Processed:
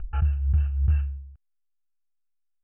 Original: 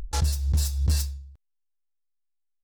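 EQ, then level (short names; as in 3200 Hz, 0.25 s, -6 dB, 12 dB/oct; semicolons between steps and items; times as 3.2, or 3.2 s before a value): Chebyshev low-pass 3000 Hz, order 10; fixed phaser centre 1000 Hz, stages 6; fixed phaser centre 2000 Hz, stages 6; +3.5 dB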